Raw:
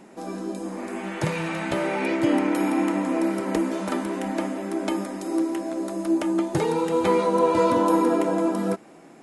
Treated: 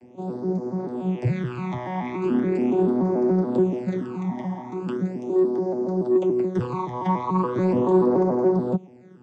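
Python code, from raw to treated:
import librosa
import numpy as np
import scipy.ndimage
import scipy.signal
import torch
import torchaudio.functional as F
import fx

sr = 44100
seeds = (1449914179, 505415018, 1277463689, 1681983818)

p1 = fx.vocoder_arp(x, sr, chord='bare fifth', root=47, every_ms=143)
p2 = fx.spec_repair(p1, sr, seeds[0], start_s=3.94, length_s=0.75, low_hz=700.0, high_hz=1800.0, source='after')
p3 = fx.phaser_stages(p2, sr, stages=12, low_hz=440.0, high_hz=2900.0, hz=0.39, feedback_pct=25)
p4 = 10.0 ** (-22.0 / 20.0) * np.tanh(p3 / 10.0 ** (-22.0 / 20.0))
p5 = p3 + F.gain(torch.from_numpy(p4), -6.0).numpy()
y = fx.peak_eq(p5, sr, hz=850.0, db=4.0, octaves=0.77)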